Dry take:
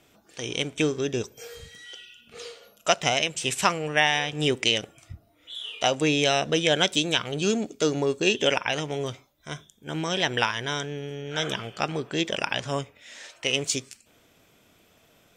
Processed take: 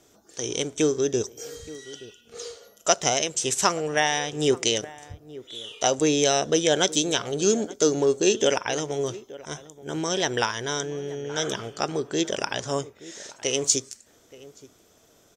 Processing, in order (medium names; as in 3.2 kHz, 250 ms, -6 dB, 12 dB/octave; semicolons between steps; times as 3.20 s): fifteen-band graphic EQ 160 Hz -3 dB, 400 Hz +5 dB, 2.5 kHz -8 dB, 6.3 kHz +9 dB; echo from a far wall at 150 m, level -18 dB